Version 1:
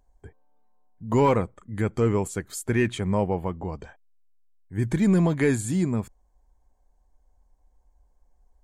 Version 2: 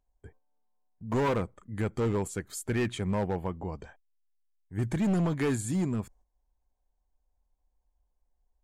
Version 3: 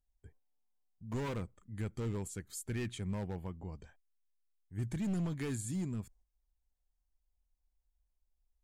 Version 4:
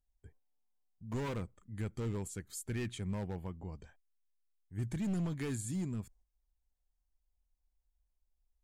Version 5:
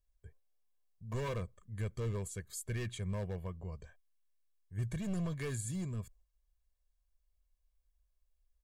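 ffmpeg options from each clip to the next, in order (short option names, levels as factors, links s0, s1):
-af "volume=9.44,asoftclip=hard,volume=0.106,agate=range=0.355:threshold=0.00251:ratio=16:detection=peak,volume=0.631"
-af "equalizer=f=760:w=0.37:g=-9.5,volume=0.596"
-af anull
-af "aecho=1:1:1.8:0.64,volume=0.891"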